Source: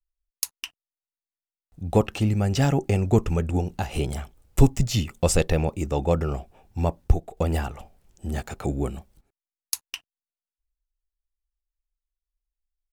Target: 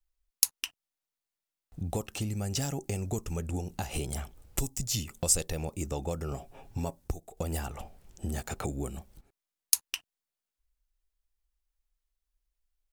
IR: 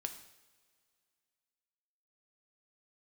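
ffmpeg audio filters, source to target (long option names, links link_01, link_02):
-filter_complex "[0:a]asettb=1/sr,asplit=3[link_01][link_02][link_03];[link_01]atrim=end=6.324[link_04];[link_02]atrim=start=6.32:end=6.99,asetpts=PTS-STARTPTS,afade=type=in:duration=0.004:curve=qsin,afade=type=out:start_time=0.666:duration=0.004:curve=qsin,aecho=1:1:7.3:0.5,atrim=end_sample=29547[link_05];[link_03]atrim=start=6.986[link_06];[link_04][link_05]acrossfade=duration=0.004:curve1=hsin:curve2=qsin[link_07];[link_07][link_06]acrossfade=duration=0.004:curve1=qsin:curve2=hsin,acrossover=split=5500[link_08][link_09];[link_08]acompressor=threshold=-36dB:ratio=6[link_10];[link_10][link_09]amix=inputs=2:normalize=0,volume=4dB"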